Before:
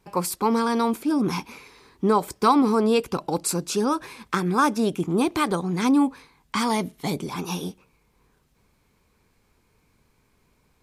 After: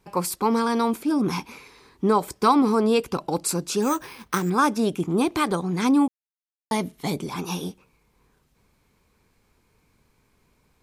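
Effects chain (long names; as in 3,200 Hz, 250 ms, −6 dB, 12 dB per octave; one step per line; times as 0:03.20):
0:03.82–0:04.50: bad sample-rate conversion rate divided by 6×, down none, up hold
0:06.08–0:06.71: silence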